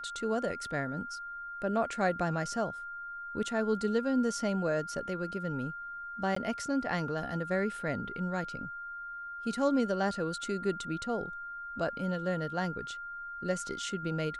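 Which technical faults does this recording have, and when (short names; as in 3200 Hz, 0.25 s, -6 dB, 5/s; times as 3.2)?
tone 1400 Hz -39 dBFS
6.35–6.36 gap 14 ms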